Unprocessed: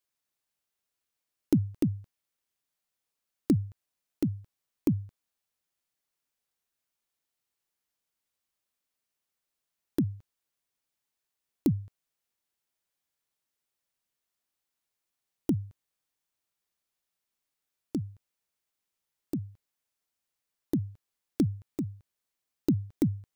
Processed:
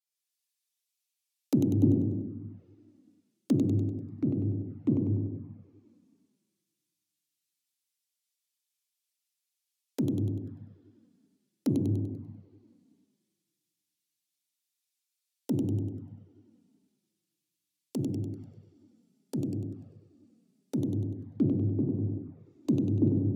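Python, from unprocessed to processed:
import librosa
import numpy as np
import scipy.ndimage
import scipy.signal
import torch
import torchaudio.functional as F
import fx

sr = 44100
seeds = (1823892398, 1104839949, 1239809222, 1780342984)

p1 = fx.over_compress(x, sr, threshold_db=-32.0, ratio=-1.0)
p2 = x + F.gain(torch.from_numpy(p1), 2.0).numpy()
p3 = fx.rev_plate(p2, sr, seeds[0], rt60_s=3.1, hf_ratio=0.8, predelay_ms=0, drr_db=-2.0)
p4 = fx.env_lowpass_down(p3, sr, base_hz=630.0, full_db=-23.5)
p5 = p4 + fx.echo_feedback(p4, sr, ms=98, feedback_pct=56, wet_db=-6.0, dry=0)
p6 = fx.env_flanger(p5, sr, rest_ms=6.3, full_db=-20.0)
p7 = fx.highpass(p6, sr, hz=260.0, slope=6)
p8 = fx.band_widen(p7, sr, depth_pct=70)
y = F.gain(torch.from_numpy(p8), -2.0).numpy()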